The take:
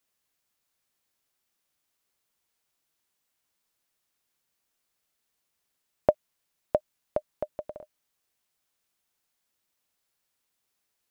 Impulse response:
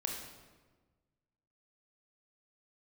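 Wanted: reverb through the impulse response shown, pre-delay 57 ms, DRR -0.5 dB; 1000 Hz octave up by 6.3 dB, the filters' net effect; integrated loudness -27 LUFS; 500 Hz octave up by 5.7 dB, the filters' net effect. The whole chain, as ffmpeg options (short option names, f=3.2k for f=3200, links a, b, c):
-filter_complex "[0:a]equalizer=f=500:t=o:g=4.5,equalizer=f=1k:t=o:g=7,asplit=2[a][b];[1:a]atrim=start_sample=2205,adelay=57[c];[b][c]afir=irnorm=-1:irlink=0,volume=-1dB[d];[a][d]amix=inputs=2:normalize=0,volume=-2.5dB"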